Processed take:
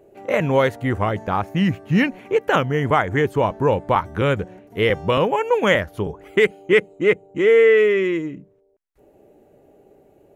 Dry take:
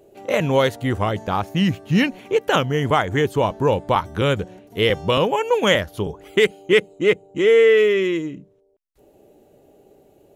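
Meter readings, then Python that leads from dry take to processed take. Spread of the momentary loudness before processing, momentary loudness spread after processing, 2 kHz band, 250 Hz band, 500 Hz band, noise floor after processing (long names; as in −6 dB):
8 LU, 8 LU, +1.0 dB, 0.0 dB, 0.0 dB, −57 dBFS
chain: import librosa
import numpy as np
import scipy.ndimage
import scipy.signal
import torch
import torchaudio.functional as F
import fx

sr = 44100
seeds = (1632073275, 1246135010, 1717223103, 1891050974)

y = fx.high_shelf_res(x, sr, hz=2700.0, db=-6.0, q=1.5)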